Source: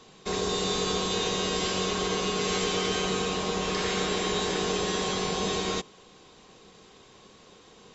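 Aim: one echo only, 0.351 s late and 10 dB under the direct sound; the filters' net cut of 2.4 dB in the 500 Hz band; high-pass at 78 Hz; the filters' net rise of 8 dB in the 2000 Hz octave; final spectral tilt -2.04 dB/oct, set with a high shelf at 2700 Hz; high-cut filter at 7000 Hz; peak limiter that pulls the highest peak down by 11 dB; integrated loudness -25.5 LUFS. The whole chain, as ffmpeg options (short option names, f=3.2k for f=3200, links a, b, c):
-af "highpass=78,lowpass=7k,equalizer=f=500:t=o:g=-3.5,equalizer=f=2k:t=o:g=8,highshelf=f=2.7k:g=5,alimiter=limit=-24dB:level=0:latency=1,aecho=1:1:351:0.316,volume=5.5dB"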